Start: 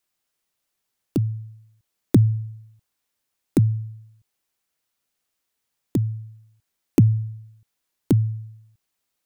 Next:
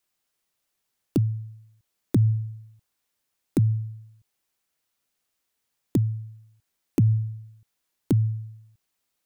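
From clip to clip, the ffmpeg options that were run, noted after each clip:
ffmpeg -i in.wav -af "alimiter=limit=-12dB:level=0:latency=1:release=145" out.wav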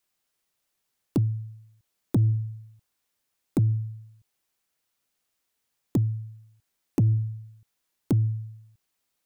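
ffmpeg -i in.wav -af "asoftclip=type=tanh:threshold=-14dB" out.wav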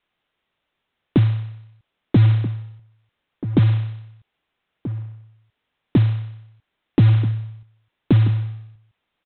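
ffmpeg -i in.wav -filter_complex "[0:a]aresample=8000,acrusher=bits=5:mode=log:mix=0:aa=0.000001,aresample=44100,asplit=2[link_01][link_02];[link_02]adelay=1283,volume=-13dB,highshelf=frequency=4000:gain=-28.9[link_03];[link_01][link_03]amix=inputs=2:normalize=0,volume=8dB" out.wav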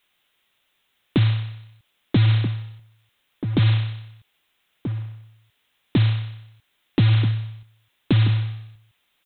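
ffmpeg -i in.wav -af "alimiter=limit=-12dB:level=0:latency=1,crystalizer=i=6.5:c=0" out.wav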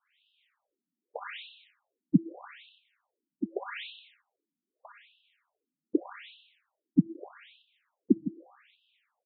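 ffmpeg -i in.wav -af "afftfilt=real='re*between(b*sr/1024,230*pow(3700/230,0.5+0.5*sin(2*PI*0.82*pts/sr))/1.41,230*pow(3700/230,0.5+0.5*sin(2*PI*0.82*pts/sr))*1.41)':imag='im*between(b*sr/1024,230*pow(3700/230,0.5+0.5*sin(2*PI*0.82*pts/sr))/1.41,230*pow(3700/230,0.5+0.5*sin(2*PI*0.82*pts/sr))*1.41)':win_size=1024:overlap=0.75" out.wav

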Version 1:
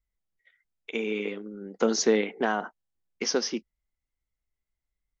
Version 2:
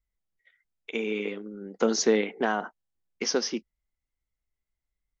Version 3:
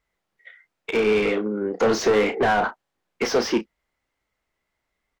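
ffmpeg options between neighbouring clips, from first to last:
ffmpeg -i in.wav -af anull out.wav
ffmpeg -i in.wav -filter_complex "[0:a]asplit=2[link_01][link_02];[link_02]highpass=frequency=720:poles=1,volume=29dB,asoftclip=type=tanh:threshold=-10dB[link_03];[link_01][link_03]amix=inputs=2:normalize=0,lowpass=frequency=1100:poles=1,volume=-6dB,asplit=2[link_04][link_05];[link_05]adelay=33,volume=-10dB[link_06];[link_04][link_06]amix=inputs=2:normalize=0" out.wav

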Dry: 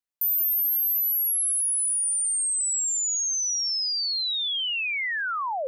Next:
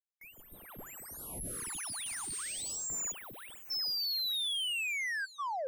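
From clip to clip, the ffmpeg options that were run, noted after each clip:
ffmpeg -i in.wav -af "afftdn=noise_reduction=33:noise_floor=-39,adynamicsmooth=sensitivity=7:basefreq=870,afftfilt=real='re*(1-between(b*sr/1024,430*pow(5800/430,0.5+0.5*sin(2*PI*0.37*pts/sr))/1.41,430*pow(5800/430,0.5+0.5*sin(2*PI*0.37*pts/sr))*1.41))':imag='im*(1-between(b*sr/1024,430*pow(5800/430,0.5+0.5*sin(2*PI*0.37*pts/sr))/1.41,430*pow(5800/430,0.5+0.5*sin(2*PI*0.37*pts/sr))*1.41))':win_size=1024:overlap=0.75,volume=-7dB" out.wav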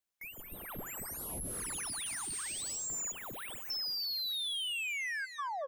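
ffmpeg -i in.wav -filter_complex "[0:a]acompressor=threshold=-47dB:ratio=3,asplit=2[link_01][link_02];[link_02]adelay=229,lowpass=frequency=1200:poles=1,volume=-7dB,asplit=2[link_03][link_04];[link_04]adelay=229,lowpass=frequency=1200:poles=1,volume=0.28,asplit=2[link_05][link_06];[link_06]adelay=229,lowpass=frequency=1200:poles=1,volume=0.28[link_07];[link_01][link_03][link_05][link_07]amix=inputs=4:normalize=0,volume=7dB" out.wav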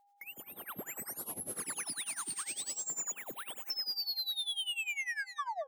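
ffmpeg -i in.wav -af "highpass=190,tremolo=f=10:d=0.89,aeval=exprs='val(0)+0.000316*sin(2*PI*810*n/s)':channel_layout=same,volume=3.5dB" out.wav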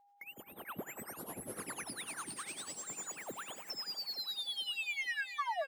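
ffmpeg -i in.wav -filter_complex "[0:a]highshelf=frequency=3400:gain=-10.5,asplit=2[link_01][link_02];[link_02]aecho=0:1:438|876|1314|1752|2190|2628:0.299|0.161|0.0871|0.047|0.0254|0.0137[link_03];[link_01][link_03]amix=inputs=2:normalize=0,volume=2dB" out.wav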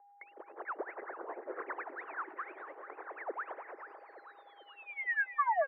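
ffmpeg -i in.wav -af "asuperpass=centerf=830:order=12:qfactor=0.52,volume=6.5dB" out.wav

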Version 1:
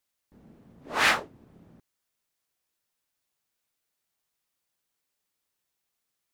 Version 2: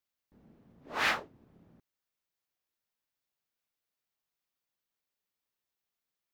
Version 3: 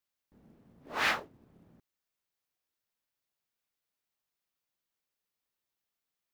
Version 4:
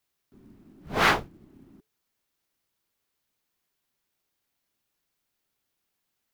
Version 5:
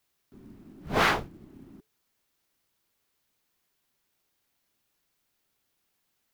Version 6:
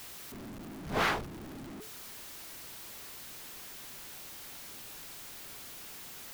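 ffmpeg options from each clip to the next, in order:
ffmpeg -i in.wav -af "equalizer=frequency=9000:width_type=o:width=0.84:gain=-7,volume=-6.5dB" out.wav
ffmpeg -i in.wav -af "acrusher=bits=7:mode=log:mix=0:aa=0.000001" out.wav
ffmpeg -i in.wav -af "afreqshift=-440,volume=8dB" out.wav
ffmpeg -i in.wav -af "acompressor=threshold=-23dB:ratio=6,volume=3.5dB" out.wav
ffmpeg -i in.wav -af "aeval=exprs='val(0)+0.5*0.02*sgn(val(0))':channel_layout=same,volume=-6.5dB" out.wav

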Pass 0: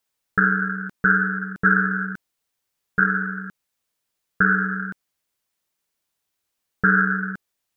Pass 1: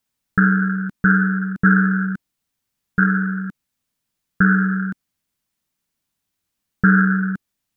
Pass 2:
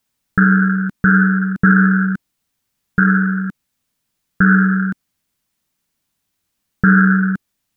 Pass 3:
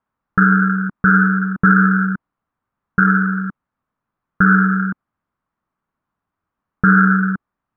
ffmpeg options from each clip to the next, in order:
ffmpeg -i in.wav -af "lowshelf=frequency=320:width_type=q:width=1.5:gain=7" out.wav
ffmpeg -i in.wav -af "alimiter=level_in=6dB:limit=-1dB:release=50:level=0:latency=1,volume=-1dB" out.wav
ffmpeg -i in.wav -af "lowpass=frequency=1200:width_type=q:width=2.6,volume=-2dB" out.wav

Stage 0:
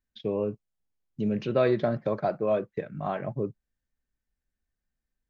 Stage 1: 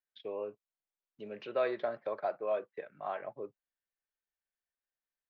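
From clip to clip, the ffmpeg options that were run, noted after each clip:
ffmpeg -i in.wav -filter_complex "[0:a]acrossover=split=420 4400:gain=0.0631 1 0.0891[link_01][link_02][link_03];[link_01][link_02][link_03]amix=inputs=3:normalize=0,volume=-5dB" out.wav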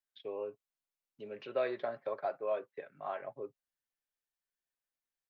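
ffmpeg -i in.wav -af "aecho=1:1:7.4:0.32,volume=-2dB" out.wav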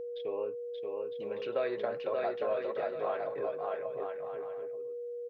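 ffmpeg -i in.wav -filter_complex "[0:a]asplit=2[link_01][link_02];[link_02]aecho=0:1:580|957|1202|1361|1465:0.631|0.398|0.251|0.158|0.1[link_03];[link_01][link_03]amix=inputs=2:normalize=0,acompressor=threshold=-35dB:ratio=2,aeval=exprs='val(0)+0.00891*sin(2*PI*480*n/s)':channel_layout=same,volume=4dB" out.wav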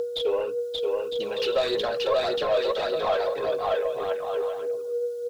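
ffmpeg -i in.wav -filter_complex "[0:a]aexciter=amount=7.9:drive=9:freq=3300,asplit=2[link_01][link_02];[link_02]highpass=frequency=720:poles=1,volume=17dB,asoftclip=type=tanh:threshold=-18dB[link_03];[link_01][link_03]amix=inputs=2:normalize=0,lowpass=frequency=1700:poles=1,volume=-6dB,aphaser=in_gain=1:out_gain=1:delay=2.4:decay=0.41:speed=1.7:type=triangular,volume=3dB" out.wav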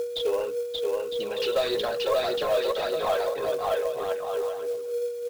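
ffmpeg -i in.wav -af "acrusher=bits=5:mode=log:mix=0:aa=0.000001,volume=-1dB" out.wav

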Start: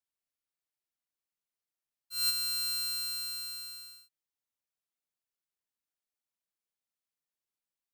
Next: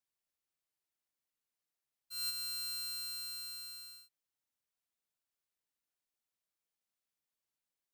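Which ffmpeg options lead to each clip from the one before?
ffmpeg -i in.wav -af "acompressor=threshold=-51dB:ratio=1.5" out.wav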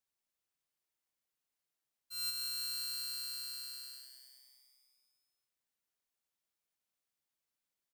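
ffmpeg -i in.wav -filter_complex "[0:a]asplit=9[link_01][link_02][link_03][link_04][link_05][link_06][link_07][link_08][link_09];[link_02]adelay=181,afreqshift=130,volume=-9dB[link_10];[link_03]adelay=362,afreqshift=260,volume=-13dB[link_11];[link_04]adelay=543,afreqshift=390,volume=-17dB[link_12];[link_05]adelay=724,afreqshift=520,volume=-21dB[link_13];[link_06]adelay=905,afreqshift=650,volume=-25.1dB[link_14];[link_07]adelay=1086,afreqshift=780,volume=-29.1dB[link_15];[link_08]adelay=1267,afreqshift=910,volume=-33.1dB[link_16];[link_09]adelay=1448,afreqshift=1040,volume=-37.1dB[link_17];[link_01][link_10][link_11][link_12][link_13][link_14][link_15][link_16][link_17]amix=inputs=9:normalize=0" out.wav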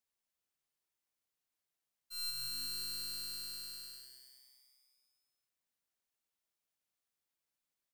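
ffmpeg -i in.wav -af "aeval=exprs='(tanh(63.1*val(0)+0.6)-tanh(0.6))/63.1':channel_layout=same,volume=2dB" out.wav

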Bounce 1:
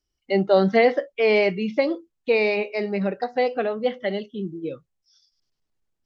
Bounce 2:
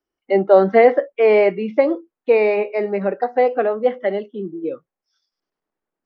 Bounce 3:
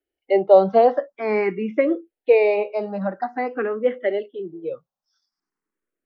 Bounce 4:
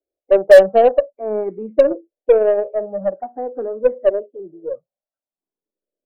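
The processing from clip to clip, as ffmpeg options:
ffmpeg -i in.wav -filter_complex "[0:a]acrossover=split=230 2000:gain=0.0891 1 0.112[link_01][link_02][link_03];[link_01][link_02][link_03]amix=inputs=3:normalize=0,volume=6.5dB" out.wav
ffmpeg -i in.wav -filter_complex "[0:a]asplit=2[link_01][link_02];[link_02]afreqshift=0.49[link_03];[link_01][link_03]amix=inputs=2:normalize=1" out.wav
ffmpeg -i in.wav -af "lowpass=frequency=590:width_type=q:width=4.9,aeval=exprs='1.5*(cos(1*acos(clip(val(0)/1.5,-1,1)))-cos(1*PI/2))+0.0473*(cos(4*acos(clip(val(0)/1.5,-1,1)))-cos(4*PI/2))+0.0473*(cos(7*acos(clip(val(0)/1.5,-1,1)))-cos(7*PI/2))':channel_layout=same,volume=-5dB" out.wav

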